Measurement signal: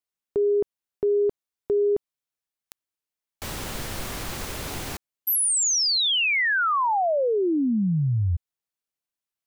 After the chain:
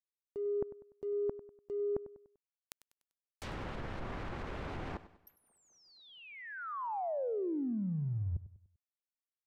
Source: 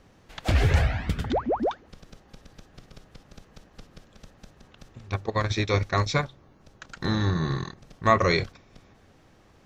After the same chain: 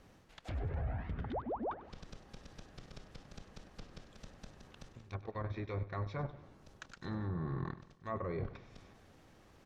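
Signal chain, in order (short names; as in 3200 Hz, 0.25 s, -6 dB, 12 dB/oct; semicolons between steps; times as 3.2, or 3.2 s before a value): G.711 law mismatch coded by A; reverse; compressor 6:1, threshold -39 dBFS; reverse; treble ducked by the level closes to 960 Hz, closed at -36 dBFS; transient shaper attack -4 dB, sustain +2 dB; feedback echo 98 ms, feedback 42%, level -15.5 dB; gain +3.5 dB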